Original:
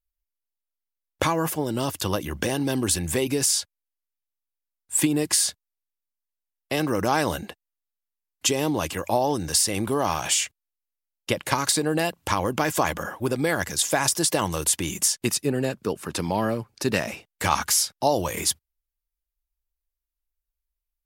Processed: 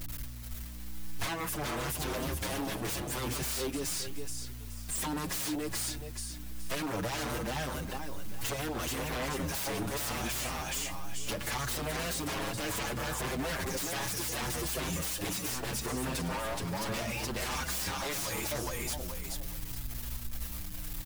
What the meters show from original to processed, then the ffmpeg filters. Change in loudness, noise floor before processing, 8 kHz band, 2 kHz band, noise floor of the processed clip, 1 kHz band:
−10.5 dB, below −85 dBFS, −11.0 dB, −6.5 dB, −41 dBFS, −10.0 dB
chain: -filter_complex "[0:a]aeval=exprs='val(0)+0.5*0.0335*sgn(val(0))':channel_layout=same,aecho=1:1:423|846|1269:0.668|0.16|0.0385,aeval=exprs='0.0794*(abs(mod(val(0)/0.0794+3,4)-2)-1)':channel_layout=same,acompressor=threshold=-30dB:ratio=6,aeval=exprs='val(0)+0.00891*(sin(2*PI*60*n/s)+sin(2*PI*2*60*n/s)/2+sin(2*PI*3*60*n/s)/3+sin(2*PI*4*60*n/s)/4+sin(2*PI*5*60*n/s)/5)':channel_layout=same,asplit=2[link_01][link_02];[link_02]adelay=6.7,afreqshift=0.71[link_03];[link_01][link_03]amix=inputs=2:normalize=1"

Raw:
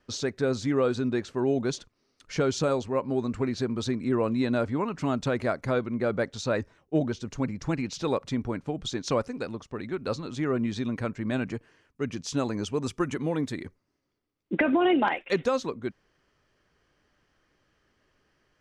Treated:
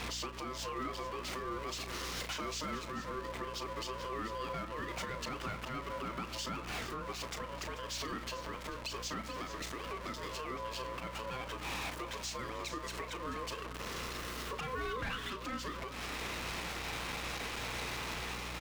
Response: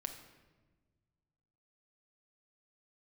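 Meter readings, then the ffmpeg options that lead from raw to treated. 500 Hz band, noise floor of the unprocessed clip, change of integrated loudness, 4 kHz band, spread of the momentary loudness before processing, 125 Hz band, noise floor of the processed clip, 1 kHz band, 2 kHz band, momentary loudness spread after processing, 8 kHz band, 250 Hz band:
−14.5 dB, −74 dBFS, −11.0 dB, −1.0 dB, 9 LU, −12.5 dB, −45 dBFS, −5.0 dB, −4.5 dB, 3 LU, −2.0 dB, −17.5 dB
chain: -filter_complex "[0:a]aeval=exprs='val(0)+0.5*0.0282*sgn(val(0))':channel_layout=same,highpass=frequency=750:poles=1,dynaudnorm=framelen=180:gausssize=7:maxgain=6.5dB,highshelf=frequency=5900:gain=-10,asoftclip=type=hard:threshold=-19dB,aeval=exprs='val(0)*sin(2*PI*770*n/s)':channel_layout=same,acompressor=threshold=-33dB:ratio=6,aecho=1:1:435:0.237,aeval=exprs='val(0)+0.00447*(sin(2*PI*60*n/s)+sin(2*PI*2*60*n/s)/2+sin(2*PI*3*60*n/s)/3+sin(2*PI*4*60*n/s)/4+sin(2*PI*5*60*n/s)/5)':channel_layout=same,asplit=2[link_01][link_02];[link_02]adelay=34,volume=-11dB[link_03];[link_01][link_03]amix=inputs=2:normalize=0,alimiter=level_in=8dB:limit=-24dB:level=0:latency=1:release=481,volume=-8dB,volume=2.5dB"

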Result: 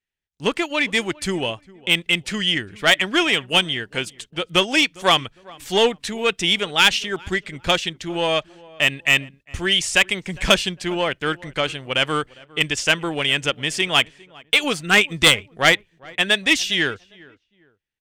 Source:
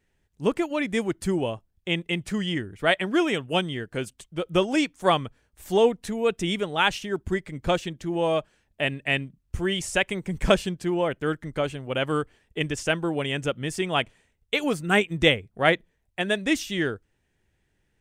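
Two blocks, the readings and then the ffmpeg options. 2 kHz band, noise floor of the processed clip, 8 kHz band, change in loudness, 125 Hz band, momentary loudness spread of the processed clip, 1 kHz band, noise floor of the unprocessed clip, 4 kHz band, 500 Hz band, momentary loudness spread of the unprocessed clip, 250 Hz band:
+8.5 dB, −66 dBFS, +10.5 dB, +6.5 dB, 0.0 dB, 10 LU, +4.0 dB, −72 dBFS, +12.0 dB, +1.0 dB, 8 LU, 0.0 dB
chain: -filter_complex "[0:a]agate=range=-22dB:threshold=-51dB:ratio=16:detection=peak,aeval=exprs='0.631*(cos(1*acos(clip(val(0)/0.631,-1,1)))-cos(1*PI/2))+0.0251*(cos(7*acos(clip(val(0)/0.631,-1,1)))-cos(7*PI/2))+0.00501*(cos(8*acos(clip(val(0)/0.631,-1,1)))-cos(8*PI/2))':channel_layout=same,equalizer=frequency=3500:width=0.42:gain=14.5,acontrast=75,asplit=2[link_01][link_02];[link_02]adelay=405,lowpass=frequency=1500:poles=1,volume=-22dB,asplit=2[link_03][link_04];[link_04]adelay=405,lowpass=frequency=1500:poles=1,volume=0.32[link_05];[link_03][link_05]amix=inputs=2:normalize=0[link_06];[link_01][link_06]amix=inputs=2:normalize=0,volume=-5dB"

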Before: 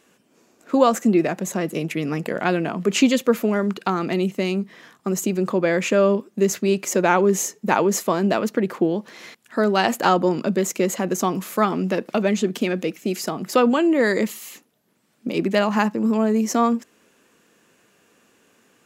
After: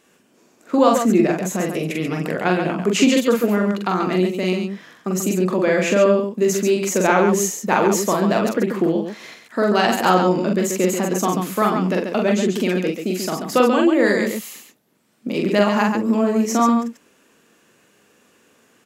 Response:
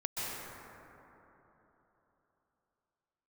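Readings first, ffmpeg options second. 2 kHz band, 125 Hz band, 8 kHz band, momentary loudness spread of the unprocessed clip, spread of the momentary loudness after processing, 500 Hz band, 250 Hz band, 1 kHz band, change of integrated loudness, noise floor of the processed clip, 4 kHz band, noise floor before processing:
+2.5 dB, +2.5 dB, +2.5 dB, 8 LU, 8 LU, +2.5 dB, +2.5 dB, +2.5 dB, +2.5 dB, −58 dBFS, +2.5 dB, −62 dBFS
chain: -af "aecho=1:1:43.73|137:0.708|0.501"

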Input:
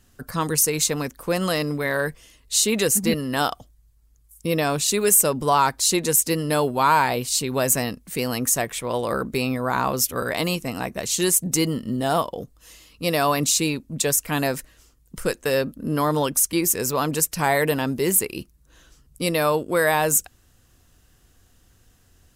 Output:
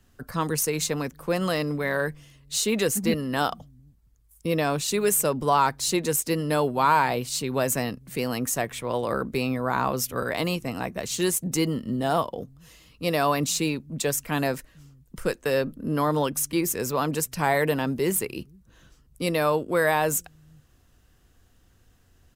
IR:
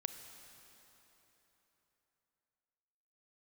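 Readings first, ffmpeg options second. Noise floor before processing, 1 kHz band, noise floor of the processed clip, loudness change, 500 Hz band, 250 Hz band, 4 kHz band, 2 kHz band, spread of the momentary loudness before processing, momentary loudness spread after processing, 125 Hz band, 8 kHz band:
−58 dBFS, −2.5 dB, −60 dBFS, −4.0 dB, −2.0 dB, −2.0 dB, −5.0 dB, −3.0 dB, 9 LU, 8 LU, −2.0 dB, −7.5 dB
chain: -filter_complex "[0:a]equalizer=frequency=9600:width=0.42:gain=-6,acrossover=split=170|2600[link_01][link_02][link_03];[link_01]aecho=1:1:459:0.2[link_04];[link_03]acrusher=bits=5:mode=log:mix=0:aa=0.000001[link_05];[link_04][link_02][link_05]amix=inputs=3:normalize=0,volume=-2dB"

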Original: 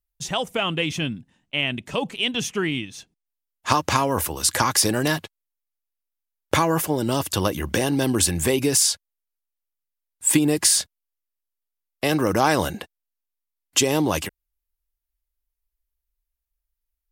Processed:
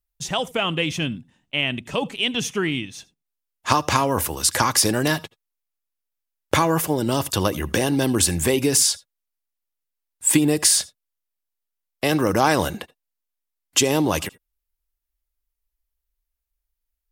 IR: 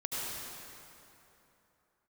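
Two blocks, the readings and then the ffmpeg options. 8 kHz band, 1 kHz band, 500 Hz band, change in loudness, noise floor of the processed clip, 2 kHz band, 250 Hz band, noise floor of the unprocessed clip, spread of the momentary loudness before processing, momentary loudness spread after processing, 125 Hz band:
+1.0 dB, +1.0 dB, +1.0 dB, +1.0 dB, −82 dBFS, +1.0 dB, +1.0 dB, −84 dBFS, 10 LU, 10 LU, +1.0 dB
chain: -filter_complex "[0:a]asplit=2[link_01][link_02];[1:a]atrim=start_sample=2205,atrim=end_sample=3969[link_03];[link_02][link_03]afir=irnorm=-1:irlink=0,volume=-15.5dB[link_04];[link_01][link_04]amix=inputs=2:normalize=0"

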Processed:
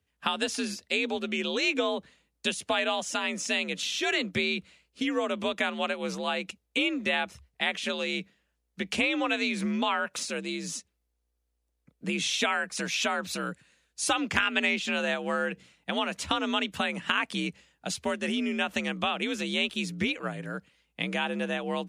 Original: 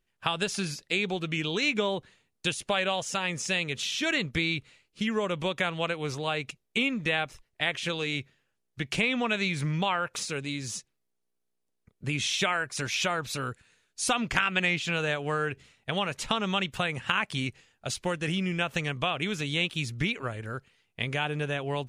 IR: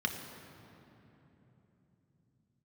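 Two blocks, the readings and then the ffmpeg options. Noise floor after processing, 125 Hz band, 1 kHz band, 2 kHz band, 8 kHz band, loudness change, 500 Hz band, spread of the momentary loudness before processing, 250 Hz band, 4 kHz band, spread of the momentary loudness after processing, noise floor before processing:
−79 dBFS, −9.0 dB, 0.0 dB, 0.0 dB, 0.0 dB, 0.0 dB, +0.5 dB, 8 LU, +1.5 dB, +0.5 dB, 8 LU, −79 dBFS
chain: -af "afreqshift=57"

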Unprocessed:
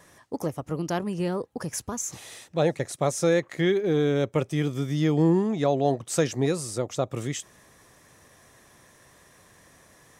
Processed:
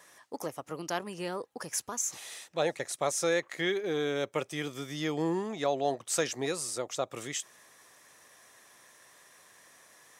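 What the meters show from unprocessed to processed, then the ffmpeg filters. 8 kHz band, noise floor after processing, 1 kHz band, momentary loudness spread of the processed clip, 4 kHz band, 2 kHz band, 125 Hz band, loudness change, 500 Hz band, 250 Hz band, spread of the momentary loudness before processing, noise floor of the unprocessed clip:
0.0 dB, −60 dBFS, −3.5 dB, 9 LU, 0.0 dB, −1.0 dB, −15.5 dB, −6.5 dB, −6.5 dB, −10.5 dB, 10 LU, −57 dBFS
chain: -af "highpass=frequency=890:poles=1"

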